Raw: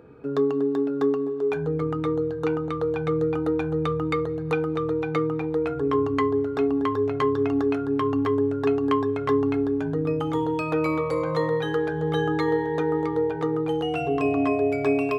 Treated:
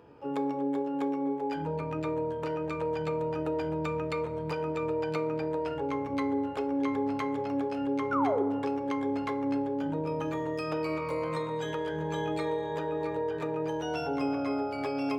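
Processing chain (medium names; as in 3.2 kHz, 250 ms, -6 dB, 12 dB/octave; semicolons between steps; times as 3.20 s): hum notches 50/100/150/200/250/300/350 Hz; compression 20:1, threshold -23 dBFS, peak gain reduction 7 dB; harmony voices +4 st -15 dB, +12 st -5 dB; painted sound fall, 8.11–8.43 s, 360–1500 Hz -22 dBFS; FDN reverb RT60 1.3 s, low-frequency decay 1.4×, high-frequency decay 0.4×, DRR 9 dB; trim -7.5 dB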